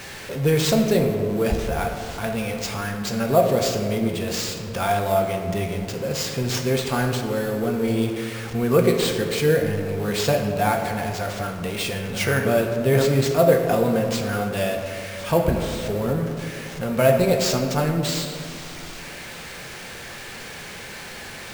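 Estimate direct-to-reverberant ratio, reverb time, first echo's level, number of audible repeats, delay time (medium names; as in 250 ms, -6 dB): 3.0 dB, 2.2 s, no echo, no echo, no echo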